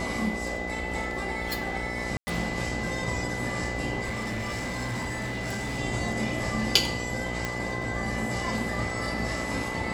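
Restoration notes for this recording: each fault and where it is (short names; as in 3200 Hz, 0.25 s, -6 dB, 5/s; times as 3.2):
buzz 60 Hz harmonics 14 -35 dBFS
crackle 12/s -38 dBFS
tone 2000 Hz -34 dBFS
2.17–2.27 gap 0.1 s
4.03–5.8 clipped -28 dBFS
7.45 pop -14 dBFS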